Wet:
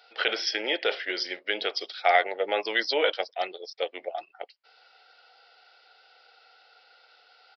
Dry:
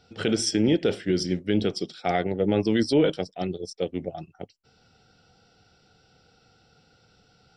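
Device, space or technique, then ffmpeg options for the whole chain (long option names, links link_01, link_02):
musical greeting card: -af "aresample=11025,aresample=44100,highpass=frequency=600:width=0.5412,highpass=frequency=600:width=1.3066,equalizer=frequency=2000:width_type=o:width=0.51:gain=4.5,volume=5.5dB"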